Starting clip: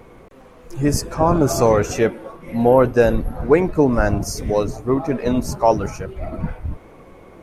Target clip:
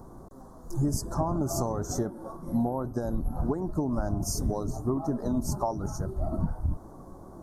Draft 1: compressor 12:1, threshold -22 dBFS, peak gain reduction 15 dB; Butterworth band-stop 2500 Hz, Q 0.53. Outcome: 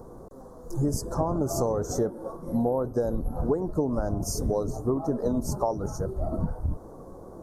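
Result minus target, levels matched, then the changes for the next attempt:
500 Hz band +4.0 dB
add after Butterworth band-stop: bell 480 Hz -12 dB 0.41 oct

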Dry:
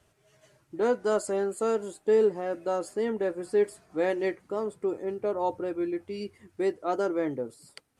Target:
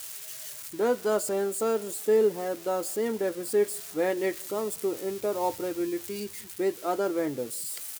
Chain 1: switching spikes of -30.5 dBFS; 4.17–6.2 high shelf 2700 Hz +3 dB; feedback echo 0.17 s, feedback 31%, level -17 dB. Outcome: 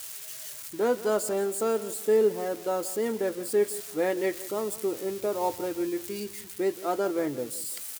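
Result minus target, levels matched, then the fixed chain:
echo-to-direct +11 dB
switching spikes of -30.5 dBFS; 4.17–6.2 high shelf 2700 Hz +3 dB; feedback echo 0.17 s, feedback 31%, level -28 dB

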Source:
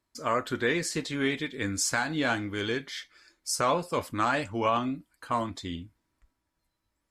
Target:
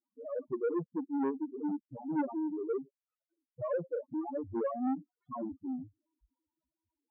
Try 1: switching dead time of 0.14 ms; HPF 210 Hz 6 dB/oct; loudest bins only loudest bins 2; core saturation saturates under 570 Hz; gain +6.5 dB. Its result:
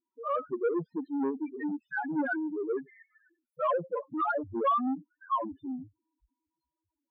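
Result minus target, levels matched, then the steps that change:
switching dead time: distortion -9 dB
change: switching dead time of 0.39 ms

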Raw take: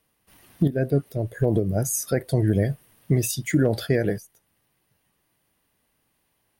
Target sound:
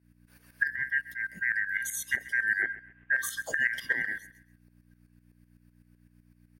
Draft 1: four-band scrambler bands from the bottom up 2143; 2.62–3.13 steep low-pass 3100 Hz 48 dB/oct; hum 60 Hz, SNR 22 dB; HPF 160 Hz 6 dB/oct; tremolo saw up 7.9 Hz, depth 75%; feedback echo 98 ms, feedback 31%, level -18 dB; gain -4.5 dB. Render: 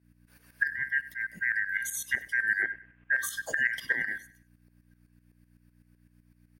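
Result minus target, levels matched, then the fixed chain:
echo 35 ms early
four-band scrambler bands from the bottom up 2143; 2.62–3.13 steep low-pass 3100 Hz 48 dB/oct; hum 60 Hz, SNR 22 dB; HPF 160 Hz 6 dB/oct; tremolo saw up 7.9 Hz, depth 75%; feedback echo 0.133 s, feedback 31%, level -18 dB; gain -4.5 dB

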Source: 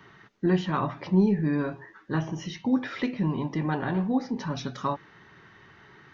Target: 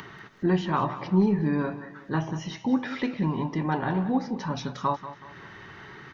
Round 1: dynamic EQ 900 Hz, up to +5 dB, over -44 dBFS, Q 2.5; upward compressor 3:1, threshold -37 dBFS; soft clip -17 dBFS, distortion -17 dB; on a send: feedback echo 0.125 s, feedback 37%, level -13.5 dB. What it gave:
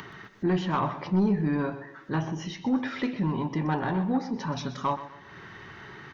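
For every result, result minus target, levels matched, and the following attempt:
soft clip: distortion +19 dB; echo 62 ms early
dynamic EQ 900 Hz, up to +5 dB, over -44 dBFS, Q 2.5; upward compressor 3:1, threshold -37 dBFS; soft clip -5.5 dBFS, distortion -35 dB; on a send: feedback echo 0.125 s, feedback 37%, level -13.5 dB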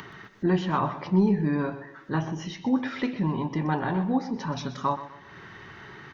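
echo 62 ms early
dynamic EQ 900 Hz, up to +5 dB, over -44 dBFS, Q 2.5; upward compressor 3:1, threshold -37 dBFS; soft clip -5.5 dBFS, distortion -35 dB; on a send: feedback echo 0.187 s, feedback 37%, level -13.5 dB

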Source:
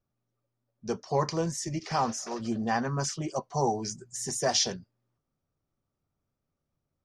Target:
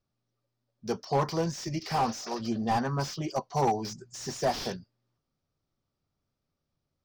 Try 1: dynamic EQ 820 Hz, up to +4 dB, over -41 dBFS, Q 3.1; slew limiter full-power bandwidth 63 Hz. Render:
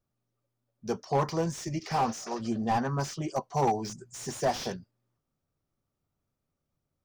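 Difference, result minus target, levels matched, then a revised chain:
4000 Hz band -3.0 dB
dynamic EQ 820 Hz, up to +4 dB, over -41 dBFS, Q 3.1; synth low-pass 4900 Hz, resonance Q 2.1; slew limiter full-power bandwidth 63 Hz

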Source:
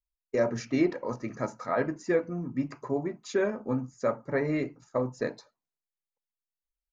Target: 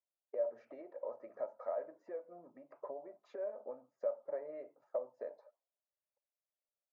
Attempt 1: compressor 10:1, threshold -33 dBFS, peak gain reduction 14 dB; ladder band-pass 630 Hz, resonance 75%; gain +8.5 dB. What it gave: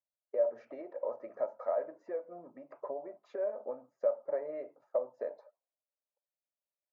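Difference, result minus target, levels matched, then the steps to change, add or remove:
compressor: peak gain reduction -6.5 dB
change: compressor 10:1, threshold -40 dBFS, peak gain reduction 20.5 dB

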